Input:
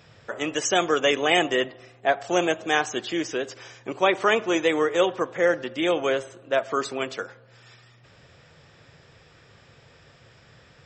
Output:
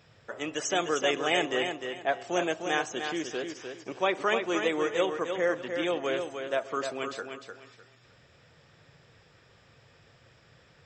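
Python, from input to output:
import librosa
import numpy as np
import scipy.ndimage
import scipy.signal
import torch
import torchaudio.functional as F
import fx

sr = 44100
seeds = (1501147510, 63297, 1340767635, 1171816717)

y = fx.echo_feedback(x, sr, ms=303, feedback_pct=25, wet_db=-6.5)
y = y * 10.0 ** (-6.5 / 20.0)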